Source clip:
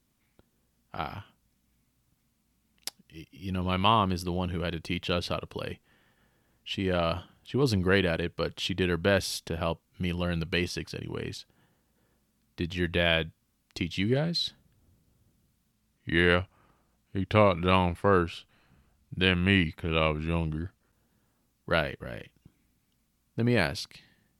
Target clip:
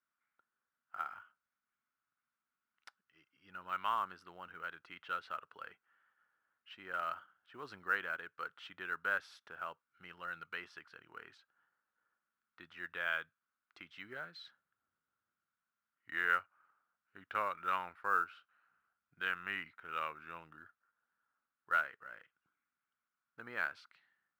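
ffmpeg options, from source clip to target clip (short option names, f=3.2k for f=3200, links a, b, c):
-af "bandpass=f=1.4k:t=q:w=6:csg=0,acrusher=bits=8:mode=log:mix=0:aa=0.000001,volume=1dB"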